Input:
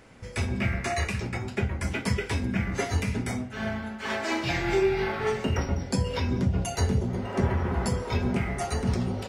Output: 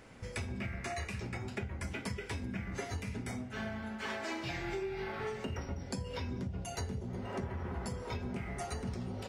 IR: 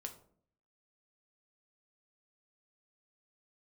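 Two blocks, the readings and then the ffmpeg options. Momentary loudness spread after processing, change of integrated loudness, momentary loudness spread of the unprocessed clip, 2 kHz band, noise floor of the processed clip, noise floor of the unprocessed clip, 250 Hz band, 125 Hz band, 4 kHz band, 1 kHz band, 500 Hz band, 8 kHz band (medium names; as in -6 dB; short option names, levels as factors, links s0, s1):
2 LU, -11.5 dB, 6 LU, -10.0 dB, -45 dBFS, -39 dBFS, -11.5 dB, -12.0 dB, -10.0 dB, -10.5 dB, -11.5 dB, -10.0 dB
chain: -af "acompressor=threshold=0.02:ratio=5,volume=0.75"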